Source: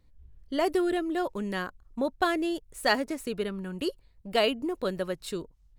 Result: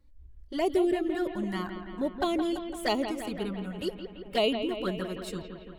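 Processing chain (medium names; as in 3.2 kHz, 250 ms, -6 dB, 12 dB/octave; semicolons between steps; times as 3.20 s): bass shelf 330 Hz +3 dB; touch-sensitive flanger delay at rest 3.6 ms, full sweep at -21 dBFS; bucket-brigade echo 169 ms, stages 4096, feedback 68%, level -9 dB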